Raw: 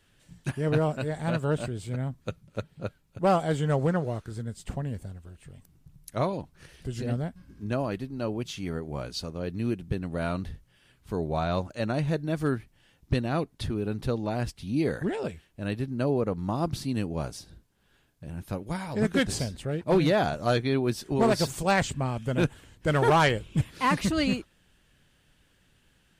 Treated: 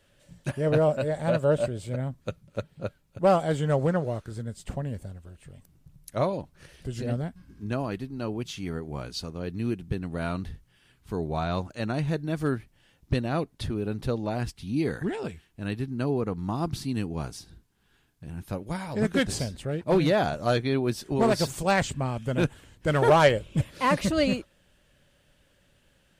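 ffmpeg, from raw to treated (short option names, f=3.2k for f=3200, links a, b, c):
-af "asetnsamples=n=441:p=0,asendcmd='2 equalizer g 4.5;7.21 equalizer g -5;12.39 equalizer g 1.5;14.38 equalizer g -9.5;18.48 equalizer g 1.5;23.02 equalizer g 11',equalizer=f=570:t=o:w=0.29:g=13.5"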